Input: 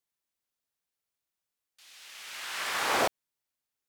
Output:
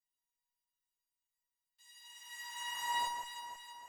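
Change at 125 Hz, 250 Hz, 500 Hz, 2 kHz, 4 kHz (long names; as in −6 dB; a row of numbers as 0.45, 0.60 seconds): below −15 dB, below −20 dB, −26.5 dB, −10.0 dB, −6.0 dB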